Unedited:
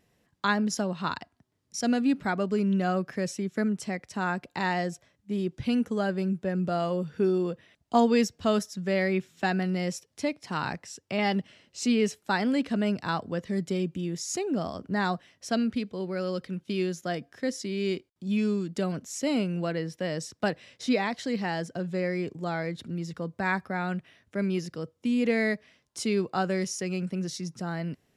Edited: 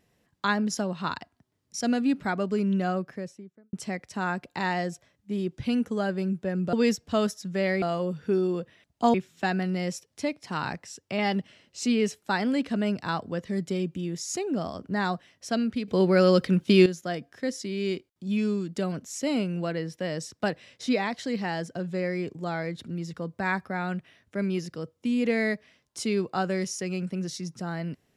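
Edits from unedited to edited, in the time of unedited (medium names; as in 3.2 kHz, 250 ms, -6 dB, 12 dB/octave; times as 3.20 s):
2.74–3.73 s: studio fade out
8.05–9.14 s: move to 6.73 s
15.88–16.86 s: gain +11.5 dB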